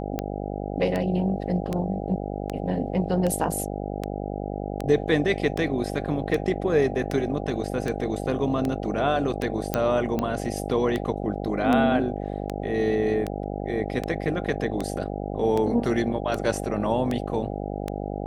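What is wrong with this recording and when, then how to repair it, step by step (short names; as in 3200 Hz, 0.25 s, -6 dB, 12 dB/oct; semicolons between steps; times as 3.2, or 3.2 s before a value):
buzz 50 Hz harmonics 16 -31 dBFS
tick 78 rpm -14 dBFS
9.74 pop -8 dBFS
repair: de-click; de-hum 50 Hz, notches 16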